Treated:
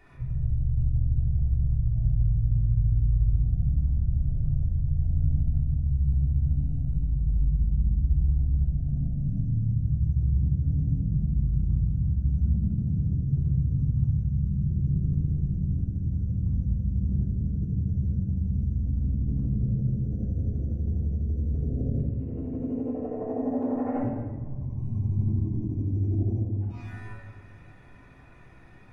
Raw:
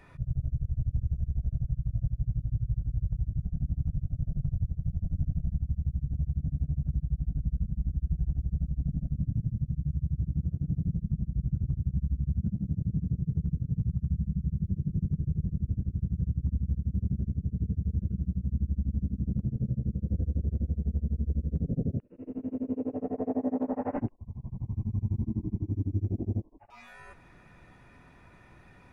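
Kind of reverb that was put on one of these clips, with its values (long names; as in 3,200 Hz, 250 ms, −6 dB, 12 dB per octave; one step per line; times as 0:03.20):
rectangular room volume 1,300 cubic metres, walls mixed, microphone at 3.3 metres
level −5 dB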